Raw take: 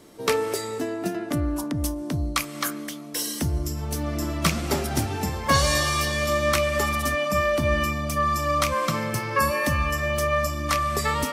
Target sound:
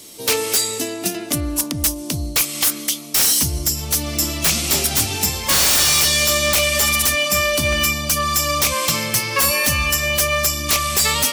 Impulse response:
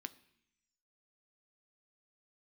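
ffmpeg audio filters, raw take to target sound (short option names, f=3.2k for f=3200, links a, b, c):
-af "aexciter=amount=5.9:drive=3.2:freq=2.3k,aeval=exprs='0.266*(abs(mod(val(0)/0.266+3,4)-2)-1)':c=same,volume=1.5dB"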